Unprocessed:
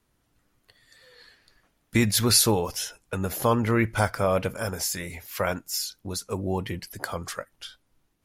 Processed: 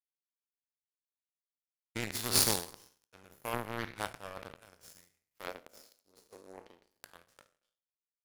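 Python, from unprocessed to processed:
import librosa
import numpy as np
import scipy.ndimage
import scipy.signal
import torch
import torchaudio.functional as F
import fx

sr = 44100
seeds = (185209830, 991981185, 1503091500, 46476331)

y = fx.spec_trails(x, sr, decay_s=1.3)
y = fx.power_curve(y, sr, exponent=3.0)
y = fx.graphic_eq_10(y, sr, hz=(125, 250, 500), db=(-7, 4, 9), at=(5.48, 7.03))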